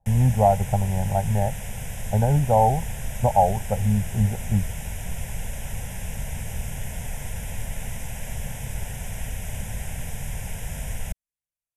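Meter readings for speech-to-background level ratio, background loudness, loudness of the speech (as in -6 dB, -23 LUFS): 11.5 dB, -34.0 LUFS, -22.5 LUFS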